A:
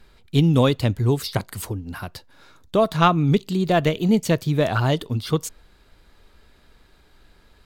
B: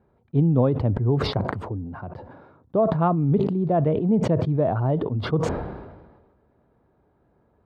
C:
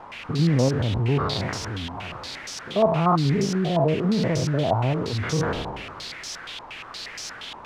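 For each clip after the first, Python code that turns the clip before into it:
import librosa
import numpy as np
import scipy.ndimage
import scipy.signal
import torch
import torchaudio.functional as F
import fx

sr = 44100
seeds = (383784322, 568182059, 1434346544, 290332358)

y1 = scipy.signal.sosfilt(scipy.signal.cheby1(2, 1.0, [100.0, 770.0], 'bandpass', fs=sr, output='sos'), x)
y1 = fx.sustainer(y1, sr, db_per_s=44.0)
y1 = y1 * librosa.db_to_amplitude(-2.0)
y2 = fx.spec_steps(y1, sr, hold_ms=100)
y2 = fx.quant_dither(y2, sr, seeds[0], bits=6, dither='triangular')
y2 = fx.filter_held_lowpass(y2, sr, hz=8.5, low_hz=940.0, high_hz=5600.0)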